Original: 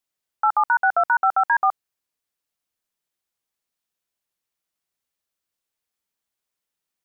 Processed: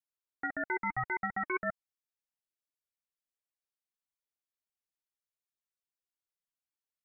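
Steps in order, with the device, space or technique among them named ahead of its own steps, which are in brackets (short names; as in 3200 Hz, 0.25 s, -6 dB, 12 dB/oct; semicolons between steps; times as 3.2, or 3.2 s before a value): alien voice (ring modulator 570 Hz; flange 1.7 Hz, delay 0.9 ms, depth 2.6 ms, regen +32%); gain -8.5 dB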